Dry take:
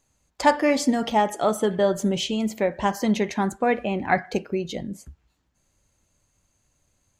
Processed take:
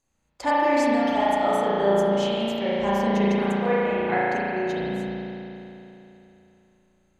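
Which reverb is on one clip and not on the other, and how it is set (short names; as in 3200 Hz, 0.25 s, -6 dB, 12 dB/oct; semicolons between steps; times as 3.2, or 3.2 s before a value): spring tank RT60 3.2 s, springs 35 ms, chirp 50 ms, DRR -9.5 dB; gain -9 dB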